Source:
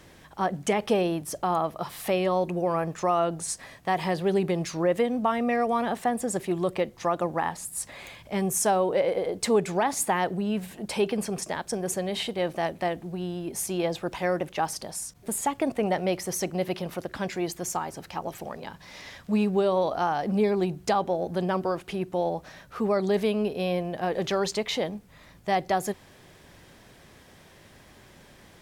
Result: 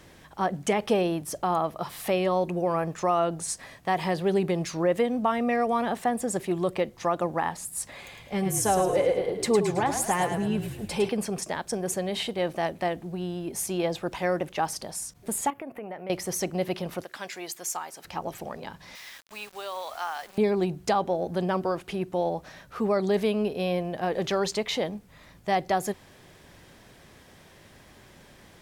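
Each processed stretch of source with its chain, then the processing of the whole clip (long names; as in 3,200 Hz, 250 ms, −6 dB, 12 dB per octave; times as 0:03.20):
0:08.01–0:11.09: notch comb filter 320 Hz + echo with shifted repeats 107 ms, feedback 46%, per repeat −41 Hz, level −7 dB
0:15.50–0:16.10: high-pass filter 240 Hz 6 dB per octave + flat-topped bell 5,600 Hz −14.5 dB + downward compressor 2.5 to 1, threshold −39 dBFS
0:17.04–0:18.05: high-pass filter 1,200 Hz 6 dB per octave + high-shelf EQ 8,800 Hz +4 dB
0:18.95–0:20.38: high-pass filter 1,200 Hz + bit-depth reduction 8 bits, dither none
whole clip: no processing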